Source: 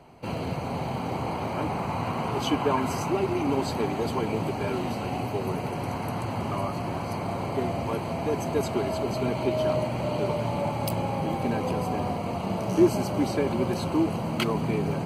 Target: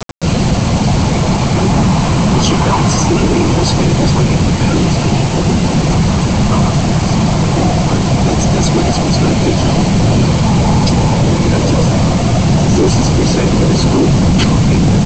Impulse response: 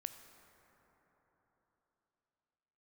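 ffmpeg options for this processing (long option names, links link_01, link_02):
-af "areverse,acompressor=mode=upward:threshold=-33dB:ratio=2.5,areverse,afftfilt=real='hypot(re,im)*cos(PI*b)':imag='0':win_size=1024:overlap=0.75,flanger=delay=6.3:depth=5.6:regen=88:speed=0.24:shape=sinusoidal,afftfilt=real='hypot(re,im)*cos(2*PI*random(0))':imag='hypot(re,im)*sin(2*PI*random(1))':win_size=512:overlap=0.75,bass=frequency=250:gain=14,treble=frequency=4000:gain=13,aresample=16000,acrusher=bits=7:mix=0:aa=0.000001,aresample=44100,apsyclip=31.5dB,volume=-5.5dB"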